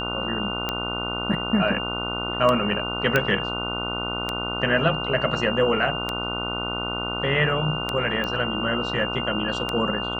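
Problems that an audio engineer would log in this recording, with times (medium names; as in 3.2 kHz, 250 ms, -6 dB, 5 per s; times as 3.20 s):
buzz 60 Hz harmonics 25 -31 dBFS
tick 33 1/3 rpm -10 dBFS
whine 2.8 kHz -29 dBFS
3.16 s: pop -6 dBFS
8.24 s: pop -16 dBFS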